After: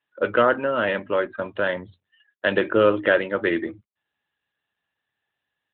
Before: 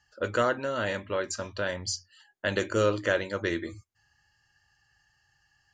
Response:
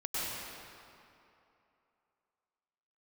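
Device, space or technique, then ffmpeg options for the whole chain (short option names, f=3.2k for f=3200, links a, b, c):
mobile call with aggressive noise cancelling: -af "highpass=170,afftdn=nr=26:nf=-47,volume=8dB" -ar 8000 -c:a libopencore_amrnb -b:a 12200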